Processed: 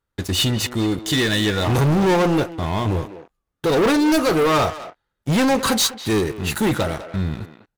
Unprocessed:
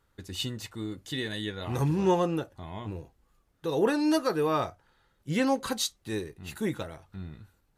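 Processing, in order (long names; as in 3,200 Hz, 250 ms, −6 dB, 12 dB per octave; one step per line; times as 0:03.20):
leveller curve on the samples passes 5
far-end echo of a speakerphone 200 ms, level −9 dB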